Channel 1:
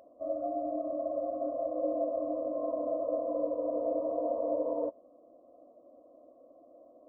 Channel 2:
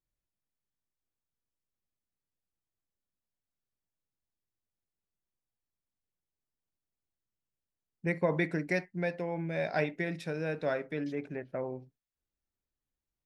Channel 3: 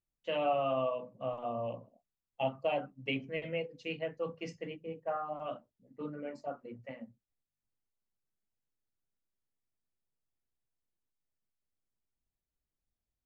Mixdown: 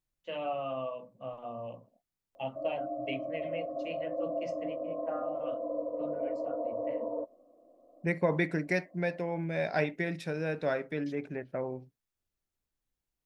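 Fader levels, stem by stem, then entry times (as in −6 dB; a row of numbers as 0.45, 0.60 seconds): −3.0, +1.0, −4.0 decibels; 2.35, 0.00, 0.00 seconds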